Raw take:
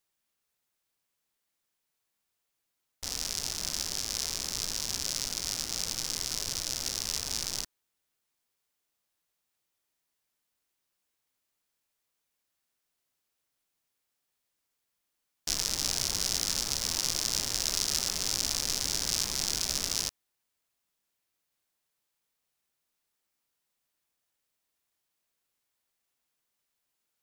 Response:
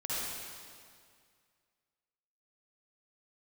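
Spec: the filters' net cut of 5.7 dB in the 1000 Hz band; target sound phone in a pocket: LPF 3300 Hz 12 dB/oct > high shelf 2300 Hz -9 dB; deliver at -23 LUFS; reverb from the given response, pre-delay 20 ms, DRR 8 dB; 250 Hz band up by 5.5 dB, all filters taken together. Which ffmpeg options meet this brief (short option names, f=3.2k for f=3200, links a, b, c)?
-filter_complex "[0:a]equalizer=f=250:t=o:g=7.5,equalizer=f=1k:t=o:g=-6,asplit=2[a][b];[1:a]atrim=start_sample=2205,adelay=20[c];[b][c]afir=irnorm=-1:irlink=0,volume=-13.5dB[d];[a][d]amix=inputs=2:normalize=0,lowpass=3.3k,highshelf=f=2.3k:g=-9,volume=18.5dB"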